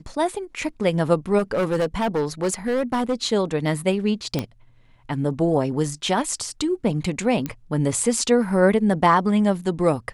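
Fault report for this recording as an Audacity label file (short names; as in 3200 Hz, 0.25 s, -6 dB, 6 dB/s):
1.380000	3.140000	clipped -17.5 dBFS
4.390000	4.390000	pop -10 dBFS
7.460000	7.460000	pop -13 dBFS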